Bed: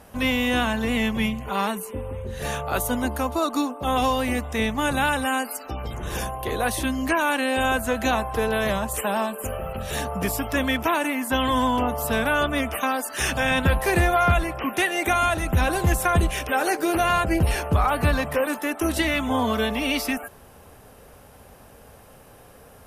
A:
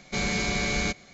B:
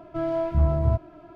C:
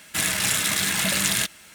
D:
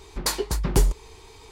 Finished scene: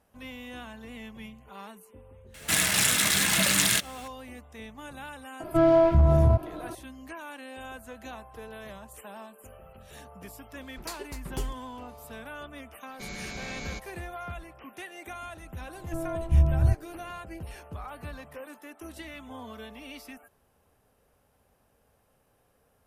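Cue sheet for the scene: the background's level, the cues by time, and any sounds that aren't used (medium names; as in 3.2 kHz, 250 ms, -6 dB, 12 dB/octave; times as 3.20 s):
bed -19.5 dB
2.34 s: add C -0.5 dB
5.40 s: add B -11 dB + loudness maximiser +18.5 dB
10.61 s: add D -14 dB
12.87 s: add A -12 dB
15.77 s: add B -10.5 dB + tilt EQ -3 dB/octave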